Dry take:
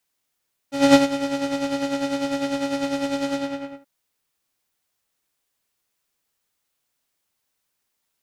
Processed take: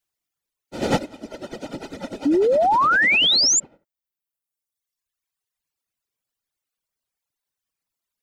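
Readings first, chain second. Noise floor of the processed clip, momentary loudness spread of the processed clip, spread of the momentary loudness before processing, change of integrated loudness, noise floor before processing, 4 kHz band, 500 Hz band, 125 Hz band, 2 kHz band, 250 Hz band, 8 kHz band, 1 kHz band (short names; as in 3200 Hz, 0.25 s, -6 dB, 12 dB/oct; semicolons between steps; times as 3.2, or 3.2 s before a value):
under -85 dBFS, 21 LU, 13 LU, +5.5 dB, -77 dBFS, +11.0 dB, +1.0 dB, +2.5 dB, +11.0 dB, -5.0 dB, +13.5 dB, +6.0 dB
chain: half-wave gain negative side -3 dB; whisperiser; reverb removal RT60 1.7 s; painted sound rise, 2.25–3.6, 270–7500 Hz -12 dBFS; gain -5 dB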